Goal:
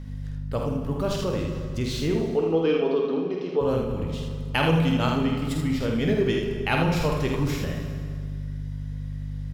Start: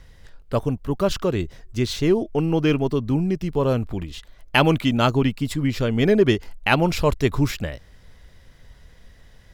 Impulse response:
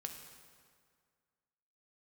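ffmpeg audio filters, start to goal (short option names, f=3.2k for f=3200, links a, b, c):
-filter_complex "[0:a]aeval=exprs='val(0)+0.0251*(sin(2*PI*50*n/s)+sin(2*PI*2*50*n/s)/2+sin(2*PI*3*50*n/s)/3+sin(2*PI*4*50*n/s)/4+sin(2*PI*5*50*n/s)/5)':c=same,asettb=1/sr,asplit=3[a][b][c];[a]atrim=end=2.224[d];[b]atrim=start=2.22:end=3.61,asetpts=PTS-STARTPTS,afade=t=in:d=0.004:c=qsin,afade=t=out:st=1.386:d=0.004:c=qsin,highpass=f=260:w=0.5412,highpass=f=260:w=1.3066,equalizer=f=440:t=q:w=4:g=9,equalizer=f=700:t=q:w=4:g=3,equalizer=f=1.2k:t=q:w=4:g=6,equalizer=f=2k:t=q:w=4:g=-5,equalizer=f=3.8k:t=q:w=4:g=6,lowpass=f=4.9k:w=0.5412,lowpass=f=4.9k:w=1.3066[e];[c]atrim=start=3.606[f];[d][e]acrossfade=d=0.004:c1=hsin:c2=qsin[g];[g][f]acrossfade=d=0.004:c1=qsin:c2=hsin,aecho=1:1:49|79:0.501|0.531[h];[1:a]atrim=start_sample=2205[i];[h][i]afir=irnorm=-1:irlink=0,asplit=2[j][k];[k]acompressor=threshold=-30dB:ratio=6,volume=1.5dB[l];[j][l]amix=inputs=2:normalize=0,volume=-6dB"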